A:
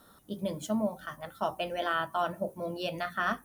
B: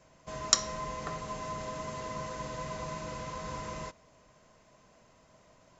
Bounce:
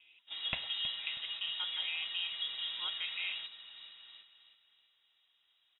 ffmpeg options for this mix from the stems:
-filter_complex "[0:a]acrossover=split=570 2200:gain=0.178 1 0.141[s0][s1][s2];[s0][s1][s2]amix=inputs=3:normalize=0,alimiter=level_in=1.88:limit=0.0631:level=0:latency=1:release=68,volume=0.531,volume=1,asplit=2[s3][s4];[1:a]volume=0.668,asplit=2[s5][s6];[s6]volume=0.237[s7];[s4]apad=whole_len=255516[s8];[s5][s8]sidechaingate=range=0.251:threshold=0.002:ratio=16:detection=peak[s9];[s7]aecho=0:1:320|640|960|1280|1600:1|0.38|0.144|0.0549|0.0209[s10];[s3][s9][s10]amix=inputs=3:normalize=0,lowpass=f=3300:t=q:w=0.5098,lowpass=f=3300:t=q:w=0.6013,lowpass=f=3300:t=q:w=0.9,lowpass=f=3300:t=q:w=2.563,afreqshift=-3900"

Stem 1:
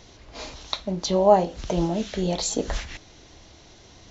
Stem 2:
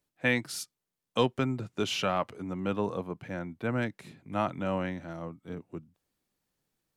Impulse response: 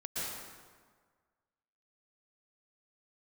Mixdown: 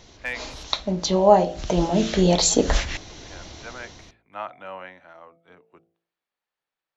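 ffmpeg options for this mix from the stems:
-filter_complex "[0:a]dynaudnorm=f=200:g=5:m=2.82,volume=1,asplit=2[s0][s1];[1:a]acrossover=split=540 3900:gain=0.1 1 0.141[s2][s3][s4];[s2][s3][s4]amix=inputs=3:normalize=0,volume=8.41,asoftclip=hard,volume=0.119,volume=0.944[s5];[s1]apad=whole_len=307151[s6];[s5][s6]sidechaincompress=threshold=0.0141:ratio=8:attack=16:release=422[s7];[s0][s7]amix=inputs=2:normalize=0,bandreject=f=55.98:t=h:w=4,bandreject=f=111.96:t=h:w=4,bandreject=f=167.94:t=h:w=4,bandreject=f=223.92:t=h:w=4,bandreject=f=279.9:t=h:w=4,bandreject=f=335.88:t=h:w=4,bandreject=f=391.86:t=h:w=4,bandreject=f=447.84:t=h:w=4,bandreject=f=503.82:t=h:w=4,bandreject=f=559.8:t=h:w=4,bandreject=f=615.78:t=h:w=4,bandreject=f=671.76:t=h:w=4,bandreject=f=727.74:t=h:w=4,bandreject=f=783.72:t=h:w=4"

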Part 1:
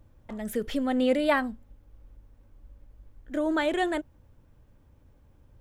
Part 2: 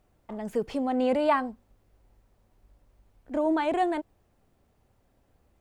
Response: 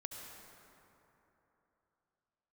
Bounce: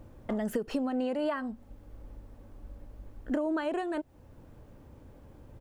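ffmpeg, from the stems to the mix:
-filter_complex "[0:a]equalizer=f=410:w=0.33:g=9,acompressor=threshold=0.0447:ratio=6,volume=1.33[s0];[1:a]lowshelf=f=180:g=-10.5,acompressor=threshold=0.02:ratio=6,adelay=1.2,volume=1.33,asplit=2[s1][s2];[s2]apad=whole_len=247199[s3];[s0][s3]sidechaincompress=threshold=0.0112:ratio=8:attack=8.9:release=617[s4];[s4][s1]amix=inputs=2:normalize=0"

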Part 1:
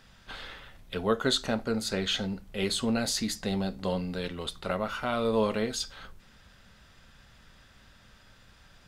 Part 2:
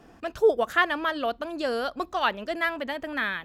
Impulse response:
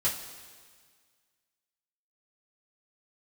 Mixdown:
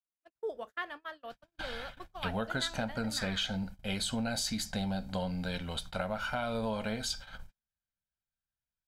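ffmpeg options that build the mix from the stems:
-filter_complex "[0:a]aecho=1:1:1.3:0.64,acompressor=threshold=0.0355:ratio=6,adelay=1300,volume=0.891[s0];[1:a]volume=0.15,asplit=2[s1][s2];[s2]volume=0.0944[s3];[2:a]atrim=start_sample=2205[s4];[s3][s4]afir=irnorm=-1:irlink=0[s5];[s0][s1][s5]amix=inputs=3:normalize=0,agate=range=0.00631:threshold=0.00708:ratio=16:detection=peak,equalizer=f=360:t=o:w=0.77:g=-2"

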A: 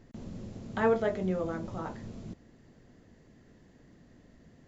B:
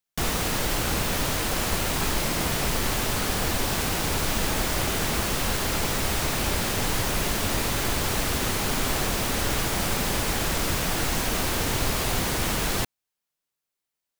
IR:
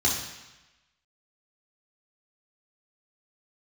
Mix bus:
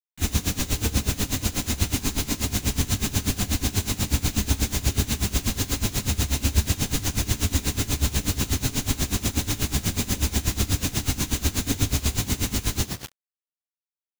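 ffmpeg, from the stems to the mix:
-filter_complex "[0:a]volume=0.473[s0];[1:a]volume=1.12,asplit=2[s1][s2];[s2]volume=0.376[s3];[2:a]atrim=start_sample=2205[s4];[s3][s4]afir=irnorm=-1:irlink=0[s5];[s0][s1][s5]amix=inputs=3:normalize=0,acrossover=split=460|3000[s6][s7][s8];[s7]acompressor=threshold=0.0158:ratio=4[s9];[s6][s9][s8]amix=inputs=3:normalize=0,acrusher=bits=4:mix=0:aa=0.000001,aeval=exprs='val(0)*pow(10,-19*(0.5-0.5*cos(2*PI*8.2*n/s))/20)':c=same"

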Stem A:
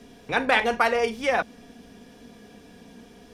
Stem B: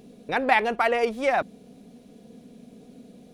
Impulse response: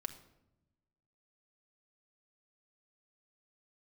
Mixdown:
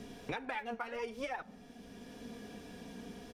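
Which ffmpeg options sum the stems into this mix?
-filter_complex "[0:a]alimiter=limit=0.2:level=0:latency=1:release=390,volume=0.891[s0];[1:a]lowpass=3300,acrossover=split=530[s1][s2];[s1]aeval=exprs='val(0)*(1-0.7/2+0.7/2*cos(2*PI*9.4*n/s))':c=same[s3];[s2]aeval=exprs='val(0)*(1-0.7/2-0.7/2*cos(2*PI*9.4*n/s))':c=same[s4];[s3][s4]amix=inputs=2:normalize=0,aphaser=in_gain=1:out_gain=1:delay=4.5:decay=0.79:speed=0.65:type=triangular,volume=-1,adelay=0.9,volume=0.188,asplit=3[s5][s6][s7];[s6]volume=0.422[s8];[s7]apad=whole_len=146892[s9];[s0][s9]sidechaincompress=threshold=0.00708:ratio=5:attack=31:release=965[s10];[2:a]atrim=start_sample=2205[s11];[s8][s11]afir=irnorm=-1:irlink=0[s12];[s10][s5][s12]amix=inputs=3:normalize=0,acompressor=threshold=0.0158:ratio=6"

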